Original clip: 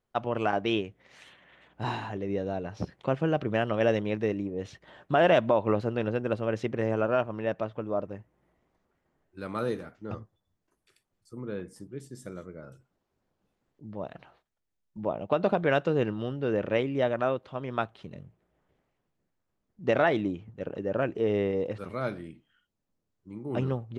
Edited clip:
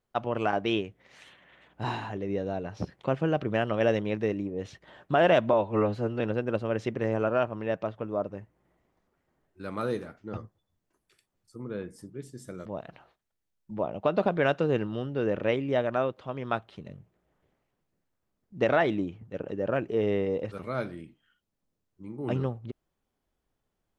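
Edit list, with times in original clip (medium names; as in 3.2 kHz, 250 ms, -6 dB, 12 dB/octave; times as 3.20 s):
5.53–5.98 s: stretch 1.5×
12.43–13.92 s: delete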